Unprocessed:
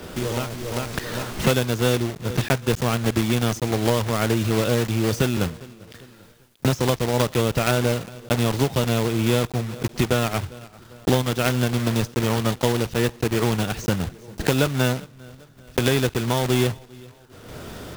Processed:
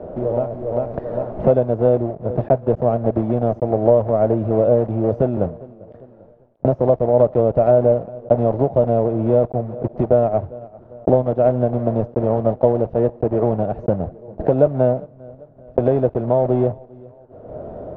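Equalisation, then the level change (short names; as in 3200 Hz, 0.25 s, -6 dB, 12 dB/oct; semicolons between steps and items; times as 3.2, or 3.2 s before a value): synth low-pass 630 Hz, resonance Q 4.9; 0.0 dB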